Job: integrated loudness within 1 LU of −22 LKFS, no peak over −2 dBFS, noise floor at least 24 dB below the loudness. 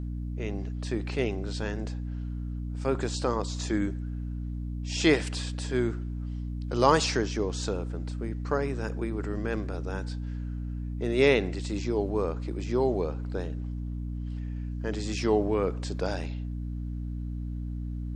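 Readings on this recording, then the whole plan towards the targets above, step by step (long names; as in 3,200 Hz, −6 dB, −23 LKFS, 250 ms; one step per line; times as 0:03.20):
mains hum 60 Hz; hum harmonics up to 300 Hz; level of the hum −31 dBFS; integrated loudness −30.5 LKFS; sample peak −6.5 dBFS; target loudness −22.0 LKFS
→ hum removal 60 Hz, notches 5
level +8.5 dB
brickwall limiter −2 dBFS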